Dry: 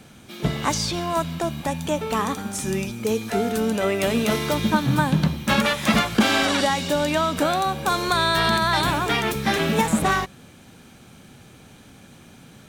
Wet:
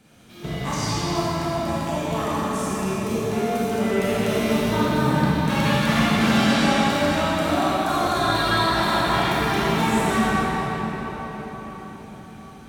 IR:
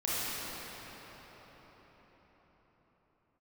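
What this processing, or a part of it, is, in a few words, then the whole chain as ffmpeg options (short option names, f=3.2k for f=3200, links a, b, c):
cathedral: -filter_complex "[1:a]atrim=start_sample=2205[a];[0:a][a]afir=irnorm=-1:irlink=0,volume=-9dB"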